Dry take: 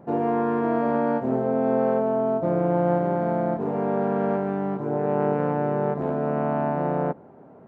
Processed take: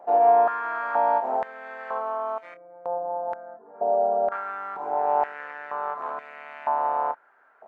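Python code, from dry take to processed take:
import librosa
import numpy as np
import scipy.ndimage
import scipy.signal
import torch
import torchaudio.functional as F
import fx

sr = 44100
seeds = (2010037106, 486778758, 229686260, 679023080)

y = fx.spec_expand(x, sr, power=2.0, at=(2.54, 4.32))
y = fx.doubler(y, sr, ms=27.0, db=-11)
y = fx.filter_held_highpass(y, sr, hz=2.1, low_hz=700.0, high_hz=2100.0)
y = y * librosa.db_to_amplitude(-2.0)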